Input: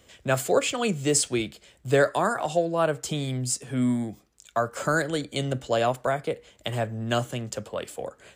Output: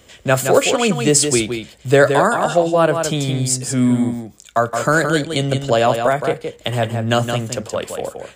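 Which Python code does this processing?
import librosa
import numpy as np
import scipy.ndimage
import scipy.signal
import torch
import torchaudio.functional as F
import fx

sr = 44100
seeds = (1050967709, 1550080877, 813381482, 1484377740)

y = x + 10.0 ** (-6.5 / 20.0) * np.pad(x, (int(169 * sr / 1000.0), 0))[:len(x)]
y = y * librosa.db_to_amplitude(8.5)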